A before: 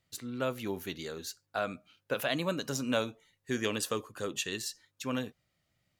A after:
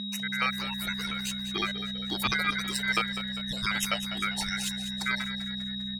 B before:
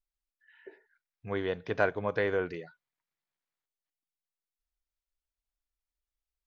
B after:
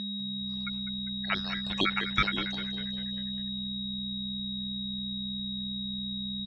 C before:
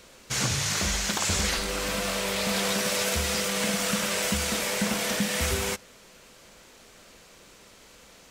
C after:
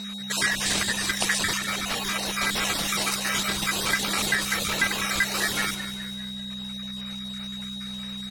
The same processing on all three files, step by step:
time-frequency cells dropped at random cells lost 46%
reverb reduction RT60 1.9 s
in parallel at −1.5 dB: downward compressor, threshold −47 dBFS
on the sum: steady tone 2,000 Hz −36 dBFS
on a send: echo with shifted repeats 199 ms, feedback 56%, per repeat −63 Hz, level −11.5 dB
on the sum: ring modulation 1,800 Hz
level +6.5 dB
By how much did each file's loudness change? +5.5, 0.0, +0.5 LU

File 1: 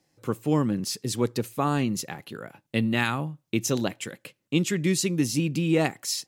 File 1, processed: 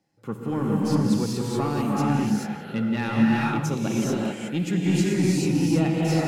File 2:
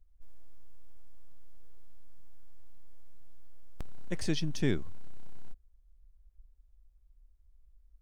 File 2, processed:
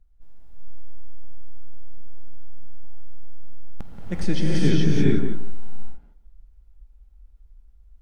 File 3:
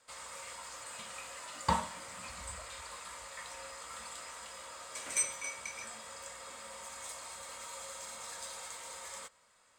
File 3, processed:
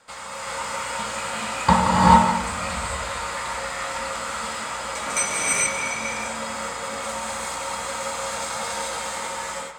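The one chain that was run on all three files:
high-shelf EQ 5,000 Hz −8 dB
soft clipping −16 dBFS
hollow resonant body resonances 200/820/1,400 Hz, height 7 dB
on a send: tape delay 176 ms, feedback 20%, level −7 dB, low-pass 1,900 Hz
on the sum: reverb whose tail is shaped and stops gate 460 ms rising, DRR −5 dB
loudness normalisation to −24 LKFS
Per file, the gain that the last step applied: −4.5, +4.0, +12.0 decibels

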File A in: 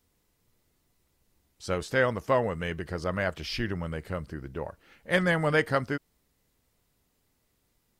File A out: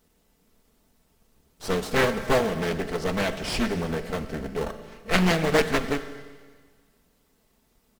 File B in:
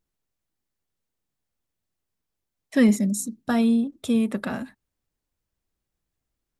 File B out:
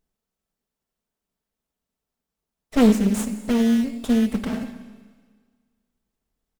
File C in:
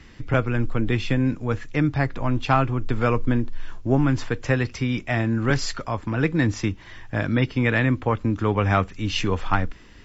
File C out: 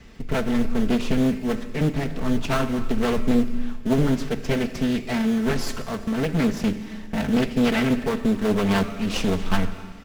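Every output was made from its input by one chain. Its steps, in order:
lower of the sound and its delayed copy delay 4.5 ms
notch filter 1,000 Hz, Q 8.2
dynamic equaliser 840 Hz, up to −6 dB, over −37 dBFS, Q 0.75
in parallel at −5 dB: sample-rate reduction 2,400 Hz, jitter 0%
on the sum: slap from a distant wall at 44 metres, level −22 dB
four-comb reverb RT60 1.6 s, combs from 29 ms, DRR 10 dB
highs frequency-modulated by the lows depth 0.57 ms
normalise the peak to −6 dBFS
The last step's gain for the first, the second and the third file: +5.5, +0.5, −1.0 decibels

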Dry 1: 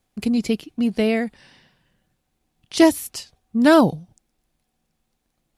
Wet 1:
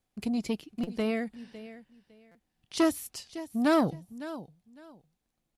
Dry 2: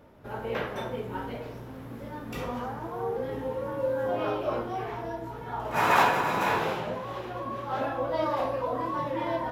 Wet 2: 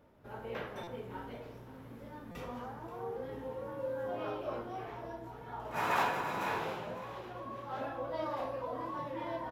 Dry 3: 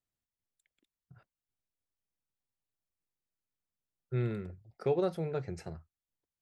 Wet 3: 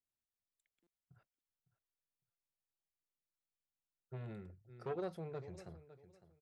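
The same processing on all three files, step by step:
repeating echo 556 ms, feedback 22%, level −16.5 dB
buffer that repeats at 0:00.83/0:02.31, samples 256, times 6
saturating transformer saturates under 650 Hz
level −9 dB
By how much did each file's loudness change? −11.5, −9.0, −11.5 LU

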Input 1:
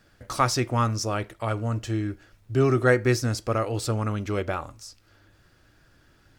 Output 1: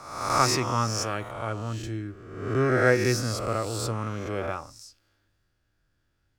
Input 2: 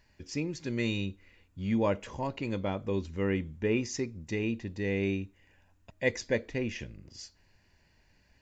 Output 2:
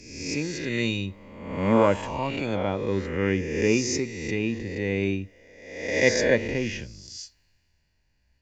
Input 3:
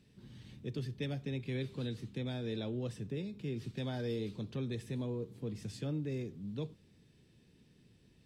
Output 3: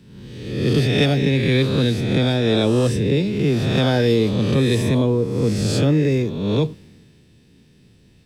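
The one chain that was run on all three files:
peak hold with a rise ahead of every peak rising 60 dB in 1.27 s
multiband upward and downward expander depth 40%
normalise the peak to −6 dBFS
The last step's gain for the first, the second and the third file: −5.0, +3.5, +19.5 decibels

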